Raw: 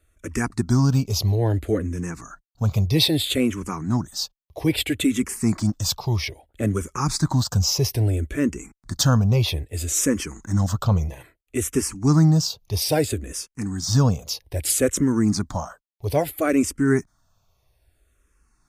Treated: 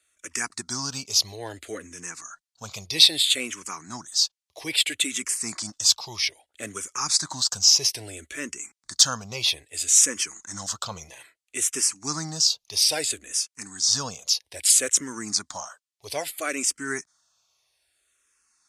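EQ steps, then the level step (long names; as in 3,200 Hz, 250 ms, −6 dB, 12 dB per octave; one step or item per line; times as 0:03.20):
meter weighting curve ITU-R 468
−5.0 dB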